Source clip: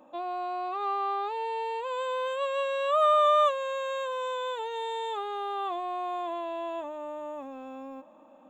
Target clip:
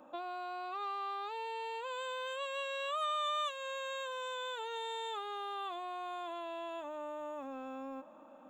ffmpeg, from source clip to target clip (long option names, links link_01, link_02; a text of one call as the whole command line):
ffmpeg -i in.wav -filter_complex "[0:a]equalizer=frequency=1400:width_type=o:width=0.27:gain=9.5,acrossover=split=2100[link_01][link_02];[link_01]acompressor=threshold=-38dB:ratio=6[link_03];[link_03][link_02]amix=inputs=2:normalize=0,volume=-1.5dB" out.wav